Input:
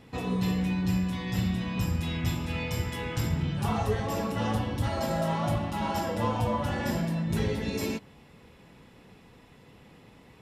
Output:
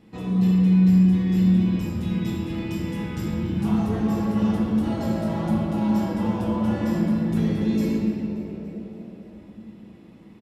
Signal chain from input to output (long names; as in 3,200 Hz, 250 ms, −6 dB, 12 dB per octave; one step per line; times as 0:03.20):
hollow resonant body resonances 210/330 Hz, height 15 dB, ringing for 95 ms
on a send: echo with shifted repeats 288 ms, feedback 56%, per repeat +82 Hz, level −18 dB
on the sum: rectangular room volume 210 cubic metres, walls hard, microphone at 0.56 metres
level −6.5 dB